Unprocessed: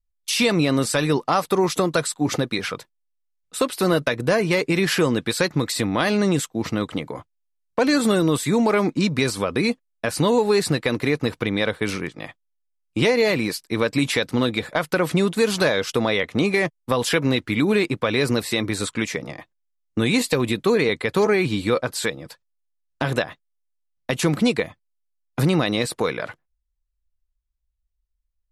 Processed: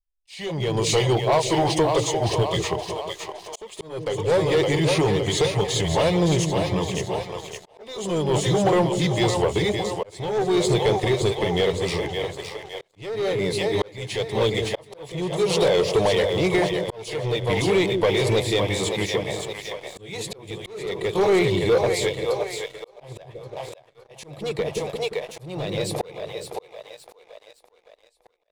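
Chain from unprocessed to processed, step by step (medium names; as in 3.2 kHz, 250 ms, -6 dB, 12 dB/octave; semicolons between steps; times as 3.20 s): pitch bend over the whole clip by -3.5 st ending unshifted; bass shelf 390 Hz -2 dB; de-hum 46.1 Hz, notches 3; in parallel at -4.5 dB: hard clipper -16.5 dBFS, distortion -15 dB; on the sum: treble shelf 4.1 kHz -9.5 dB; static phaser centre 600 Hz, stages 4; two-band feedback delay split 460 Hz, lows 174 ms, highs 564 ms, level -6.5 dB; waveshaping leveller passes 2; slow attack 638 ms; trim -2.5 dB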